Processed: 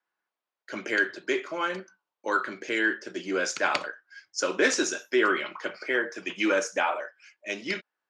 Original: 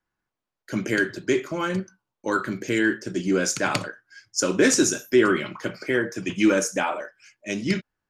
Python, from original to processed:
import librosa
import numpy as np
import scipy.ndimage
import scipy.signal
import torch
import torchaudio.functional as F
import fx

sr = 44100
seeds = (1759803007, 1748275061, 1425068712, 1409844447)

y = fx.bandpass_edges(x, sr, low_hz=500.0, high_hz=4500.0)